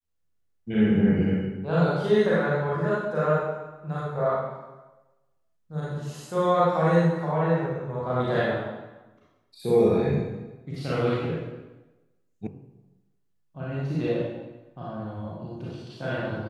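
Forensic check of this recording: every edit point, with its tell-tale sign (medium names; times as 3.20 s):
12.47 s: sound stops dead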